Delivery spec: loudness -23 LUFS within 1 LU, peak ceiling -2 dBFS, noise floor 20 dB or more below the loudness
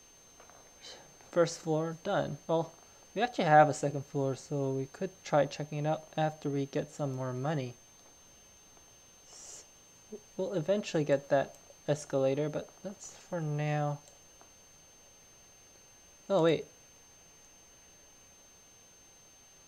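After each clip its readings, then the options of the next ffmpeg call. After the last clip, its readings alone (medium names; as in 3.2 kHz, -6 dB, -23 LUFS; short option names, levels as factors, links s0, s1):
steady tone 6.3 kHz; tone level -58 dBFS; loudness -32.5 LUFS; peak level -10.0 dBFS; loudness target -23.0 LUFS
-> -af "bandreject=f=6300:w=30"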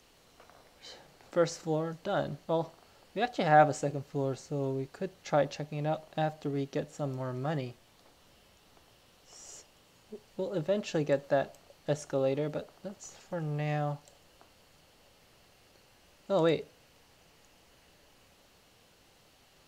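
steady tone not found; loudness -32.5 LUFS; peak level -10.0 dBFS; loudness target -23.0 LUFS
-> -af "volume=2.99,alimiter=limit=0.794:level=0:latency=1"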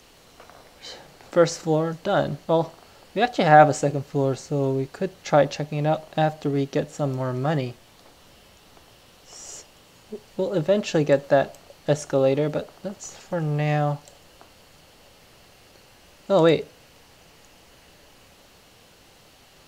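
loudness -23.0 LUFS; peak level -2.0 dBFS; noise floor -53 dBFS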